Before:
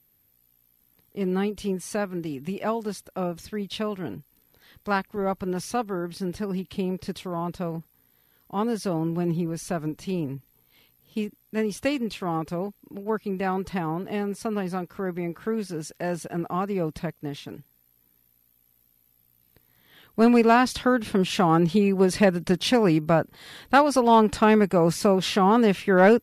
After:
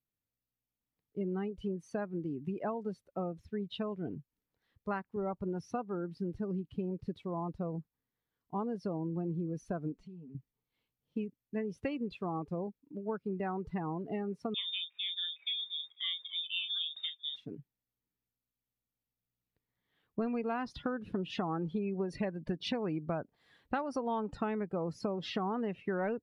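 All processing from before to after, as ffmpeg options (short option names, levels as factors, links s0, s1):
-filter_complex "[0:a]asettb=1/sr,asplit=3[s0][s1][s2];[s0]atrim=end=9.924[s3];[s1]atrim=start=9.92:end=10.35,asetpts=PTS-STARTPTS,afade=t=in:d=0.004:c=qsin,afade=t=out:st=0.426:d=0.004:c=qsin,lowpass=8800,aecho=1:1:4.6:0.65,atrim=end_sample=18963,acompressor=threshold=0.01:ratio=12:attack=3.2:release=140:knee=1:detection=peak[s4];[s2]atrim=start=10.346[s5];[s3][s4]acrossfade=d=0.004:c1=hsin:c2=qsin[s6];[s6][s5]acrossfade=d=0.004:c1=qsin:c2=hsin,asettb=1/sr,asplit=3[s7][s8][s9];[s7]atrim=end=14.544[s10];[s8]atrim=start=14.54:end=17.36,asetpts=PTS-STARTPTS,afade=t=in:d=0.004:c=qsin,afade=t=out:st=2.816:d=0.004:c=qsin,asplit=2[s11][s12];[s12]adelay=34,volume=0.422[s13];[s11][s13]amix=inputs=2:normalize=0,atrim=end_sample=124362,aecho=1:1:494:0.0794,atrim=end_sample=124362,lowpass=f=3200:t=q:w=0.5098,lowpass=f=3200:t=q:w=0.6013,lowpass=f=3200:t=q:w=0.9,lowpass=f=3200:t=q:w=2.563,afreqshift=-3800[s14];[s9]atrim=start=17.356[s15];[s10][s14]acrossfade=d=0.004:c1=hsin:c2=qsin[s16];[s16][s15]acrossfade=d=0.004:c1=qsin:c2=hsin,afftdn=nr=18:nf=-32,aemphasis=mode=reproduction:type=50kf,acompressor=threshold=0.0398:ratio=6,volume=0.631"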